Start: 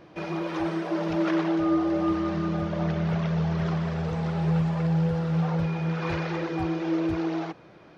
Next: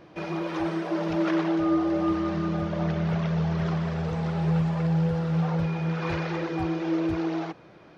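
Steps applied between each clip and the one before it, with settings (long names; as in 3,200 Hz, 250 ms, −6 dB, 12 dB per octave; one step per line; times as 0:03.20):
no processing that can be heard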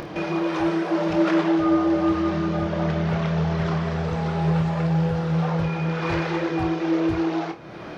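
phase distortion by the signal itself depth 0.054 ms
upward compression, threshold −30 dBFS
on a send: flutter between parallel walls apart 4.6 metres, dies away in 0.21 s
on the sum: level +4.5 dB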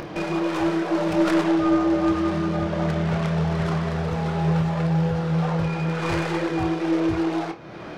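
stylus tracing distortion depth 0.13 ms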